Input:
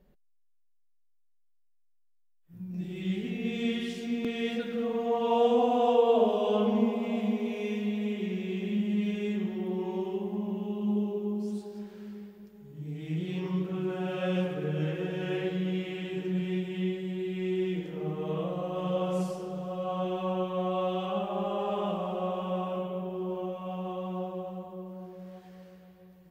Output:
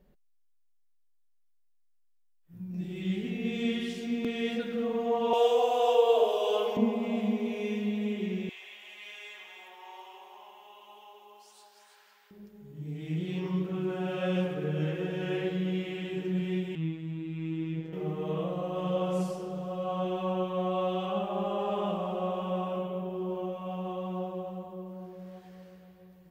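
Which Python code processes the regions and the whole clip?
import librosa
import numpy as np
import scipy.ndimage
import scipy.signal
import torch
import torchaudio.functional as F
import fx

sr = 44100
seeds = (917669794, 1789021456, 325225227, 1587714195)

y = fx.chain(x, sr, fx.cheby1_highpass(hz=420.0, order=3),
    fx.high_shelf(hz=3800.0, db=11.0), at=(5.33, 6.77))
y = fx.chain(y, sr, fx.highpass(hz=830.0, slope=24),
    fx.echo_single(ms=325, db=-6.5), at=(8.49, 12.31))
y = fx.chain(y, sr, fx.high_shelf(hz=3800.0, db=-10.5),
    fx.robotise(hz=161.0), at=(16.75, 17.93))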